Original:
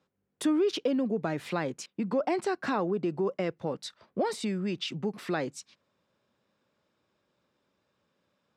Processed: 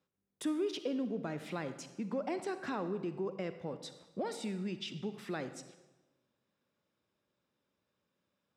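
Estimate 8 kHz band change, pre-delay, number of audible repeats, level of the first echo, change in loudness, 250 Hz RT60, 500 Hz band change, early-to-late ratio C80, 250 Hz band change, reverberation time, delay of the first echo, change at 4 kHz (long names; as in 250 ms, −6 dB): −7.0 dB, 39 ms, no echo audible, no echo audible, −8.0 dB, 1.3 s, −8.0 dB, 12.5 dB, −7.5 dB, 1.1 s, no echo audible, −7.5 dB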